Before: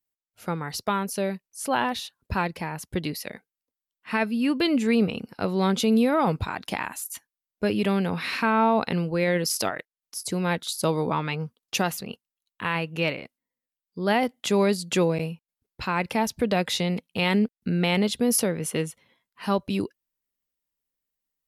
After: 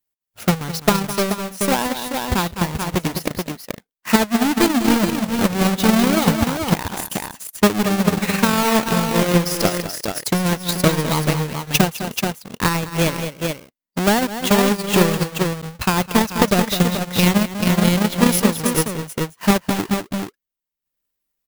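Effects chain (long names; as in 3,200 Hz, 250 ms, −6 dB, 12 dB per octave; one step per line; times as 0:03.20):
each half-wave held at its own peak
high-shelf EQ 12,000 Hz +5.5 dB
in parallel at −6 dB: hard clipping −24.5 dBFS, distortion −7 dB
on the sum: multi-tap delay 205/431 ms −6.5/−4.5 dB
transient designer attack +10 dB, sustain −9 dB
level −3.5 dB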